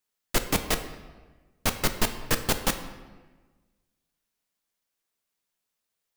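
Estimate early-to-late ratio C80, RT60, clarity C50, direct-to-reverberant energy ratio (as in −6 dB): 11.5 dB, 1.3 s, 10.0 dB, 7.0 dB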